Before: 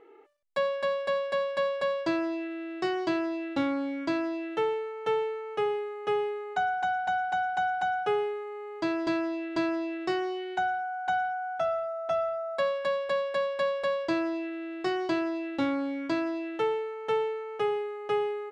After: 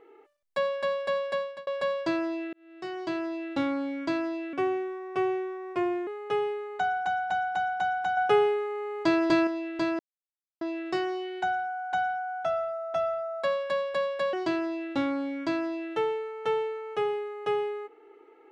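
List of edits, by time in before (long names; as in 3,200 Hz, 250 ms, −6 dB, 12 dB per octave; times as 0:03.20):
0:01.32–0:01.67: fade out
0:02.53–0:03.76: fade in equal-power
0:04.53–0:05.84: play speed 85%
0:07.94–0:09.24: clip gain +5.5 dB
0:09.76: splice in silence 0.62 s
0:13.48–0:14.96: remove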